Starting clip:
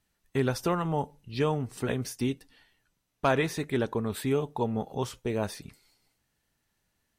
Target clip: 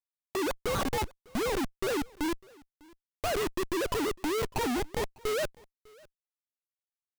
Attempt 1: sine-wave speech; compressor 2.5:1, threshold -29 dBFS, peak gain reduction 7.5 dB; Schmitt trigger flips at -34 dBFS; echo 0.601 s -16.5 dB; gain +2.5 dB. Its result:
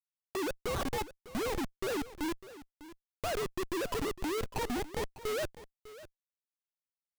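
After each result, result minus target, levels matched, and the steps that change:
compressor: peak gain reduction +7.5 dB; echo-to-direct +9 dB
remove: compressor 2.5:1, threshold -29 dBFS, peak gain reduction 7.5 dB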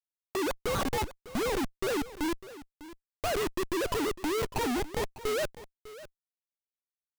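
echo-to-direct +9 dB
change: echo 0.601 s -25.5 dB

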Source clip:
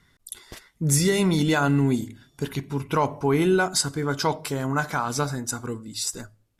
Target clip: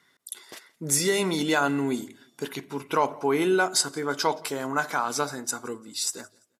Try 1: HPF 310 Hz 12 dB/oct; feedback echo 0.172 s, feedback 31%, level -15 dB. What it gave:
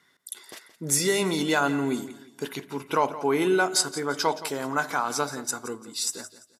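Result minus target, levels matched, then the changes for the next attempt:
echo-to-direct +10.5 dB
change: feedback echo 0.172 s, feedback 31%, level -25.5 dB

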